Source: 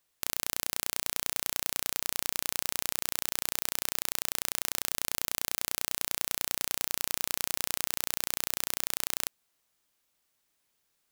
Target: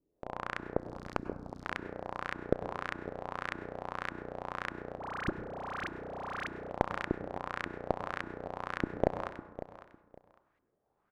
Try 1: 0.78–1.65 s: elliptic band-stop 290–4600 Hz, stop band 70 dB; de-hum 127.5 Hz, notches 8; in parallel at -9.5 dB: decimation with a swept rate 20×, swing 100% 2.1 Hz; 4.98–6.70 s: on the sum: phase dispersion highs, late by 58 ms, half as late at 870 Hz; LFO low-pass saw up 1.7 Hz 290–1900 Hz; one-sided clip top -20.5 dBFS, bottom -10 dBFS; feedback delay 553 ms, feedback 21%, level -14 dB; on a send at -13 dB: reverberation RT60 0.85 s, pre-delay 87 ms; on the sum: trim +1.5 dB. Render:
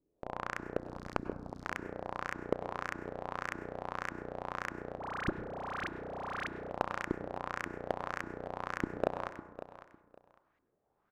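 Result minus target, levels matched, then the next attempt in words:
one-sided clip: distortion +9 dB
0.78–1.65 s: elliptic band-stop 290–4600 Hz, stop band 70 dB; de-hum 127.5 Hz, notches 8; in parallel at -9.5 dB: decimation with a swept rate 20×, swing 100% 2.1 Hz; 4.98–6.70 s: on the sum: phase dispersion highs, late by 58 ms, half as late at 870 Hz; LFO low-pass saw up 1.7 Hz 290–1900 Hz; one-sided clip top -12 dBFS, bottom -10 dBFS; feedback delay 553 ms, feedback 21%, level -14 dB; on a send at -13 dB: reverberation RT60 0.85 s, pre-delay 87 ms; on the sum: trim +1.5 dB

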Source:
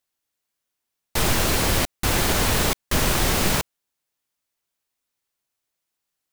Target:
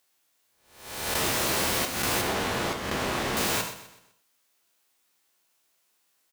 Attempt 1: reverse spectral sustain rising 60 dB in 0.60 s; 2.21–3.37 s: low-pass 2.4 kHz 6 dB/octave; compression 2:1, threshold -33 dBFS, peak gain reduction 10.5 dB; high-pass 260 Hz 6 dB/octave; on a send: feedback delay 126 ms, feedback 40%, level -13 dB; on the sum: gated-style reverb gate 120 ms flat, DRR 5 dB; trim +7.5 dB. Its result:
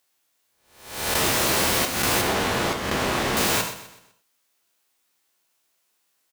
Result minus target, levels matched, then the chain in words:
compression: peak gain reduction -5 dB
reverse spectral sustain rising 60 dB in 0.60 s; 2.21–3.37 s: low-pass 2.4 kHz 6 dB/octave; compression 2:1, threshold -42.5 dBFS, peak gain reduction 15 dB; high-pass 260 Hz 6 dB/octave; on a send: feedback delay 126 ms, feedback 40%, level -13 dB; on the sum: gated-style reverb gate 120 ms flat, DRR 5 dB; trim +7.5 dB

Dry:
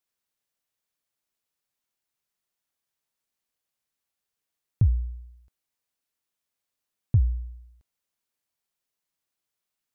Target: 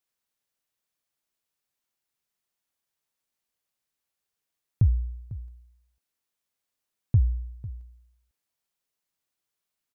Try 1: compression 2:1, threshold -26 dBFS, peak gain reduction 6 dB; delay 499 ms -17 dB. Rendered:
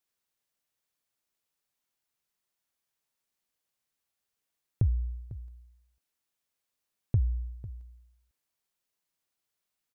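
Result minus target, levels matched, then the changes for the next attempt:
compression: peak gain reduction +6 dB
remove: compression 2:1, threshold -26 dBFS, peak gain reduction 6 dB

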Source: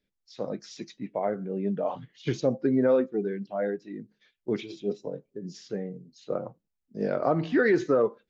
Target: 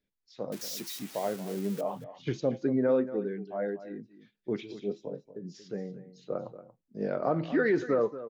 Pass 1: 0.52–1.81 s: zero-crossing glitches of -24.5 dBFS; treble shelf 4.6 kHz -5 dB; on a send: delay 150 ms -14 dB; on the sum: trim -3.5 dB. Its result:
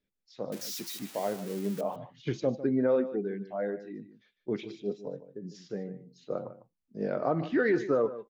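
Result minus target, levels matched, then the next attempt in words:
echo 82 ms early
0.52–1.81 s: zero-crossing glitches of -24.5 dBFS; treble shelf 4.6 kHz -5 dB; on a send: delay 232 ms -14 dB; on the sum: trim -3.5 dB

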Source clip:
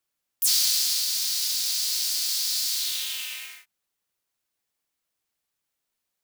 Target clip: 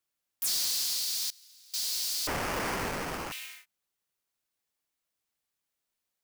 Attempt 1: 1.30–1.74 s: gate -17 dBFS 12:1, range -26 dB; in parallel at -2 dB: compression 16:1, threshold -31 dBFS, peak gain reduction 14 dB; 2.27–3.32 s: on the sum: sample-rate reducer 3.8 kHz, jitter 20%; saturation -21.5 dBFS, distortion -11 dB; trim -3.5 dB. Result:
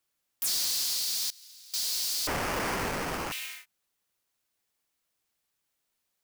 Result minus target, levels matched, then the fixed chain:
compression: peak gain reduction +14 dB
1.30–1.74 s: gate -17 dBFS 12:1, range -26 dB; 2.27–3.32 s: sample-rate reducer 3.8 kHz, jitter 20%; saturation -21.5 dBFS, distortion -12 dB; trim -3.5 dB

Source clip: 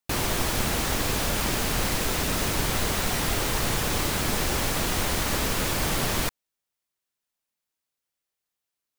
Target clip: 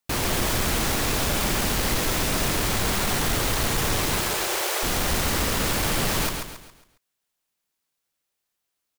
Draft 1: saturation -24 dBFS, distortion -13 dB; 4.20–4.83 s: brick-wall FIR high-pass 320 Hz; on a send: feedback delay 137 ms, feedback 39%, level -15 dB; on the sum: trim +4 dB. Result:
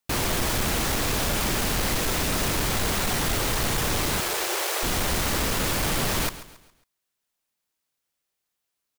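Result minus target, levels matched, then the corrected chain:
echo-to-direct -9.5 dB
saturation -24 dBFS, distortion -13 dB; 4.20–4.83 s: brick-wall FIR high-pass 320 Hz; on a send: feedback delay 137 ms, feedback 39%, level -5.5 dB; on the sum: trim +4 dB

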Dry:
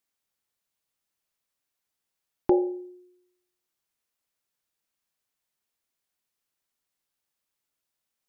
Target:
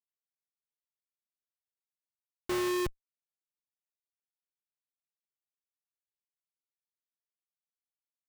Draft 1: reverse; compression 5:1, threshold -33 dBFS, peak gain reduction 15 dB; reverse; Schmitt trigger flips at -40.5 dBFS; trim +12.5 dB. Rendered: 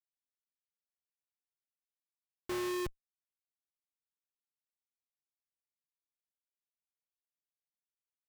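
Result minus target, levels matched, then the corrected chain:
compression: peak gain reduction +6.5 dB
reverse; compression 5:1, threshold -25 dBFS, peak gain reduction 8.5 dB; reverse; Schmitt trigger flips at -40.5 dBFS; trim +12.5 dB

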